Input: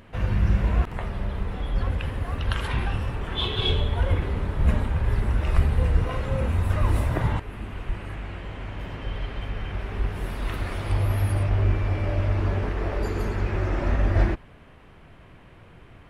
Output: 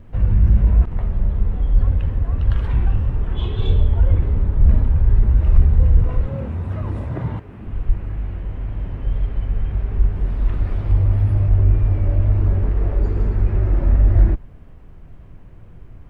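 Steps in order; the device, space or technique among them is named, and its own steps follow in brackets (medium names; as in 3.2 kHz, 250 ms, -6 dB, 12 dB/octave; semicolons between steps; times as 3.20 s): compact cassette (saturation -13.5 dBFS, distortion -19 dB; low-pass 9 kHz 12 dB/octave; wow and flutter; white noise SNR 40 dB); 6.26–7.67 s: high-pass 130 Hz 12 dB/octave; tilt EQ -3.5 dB/octave; trim -4.5 dB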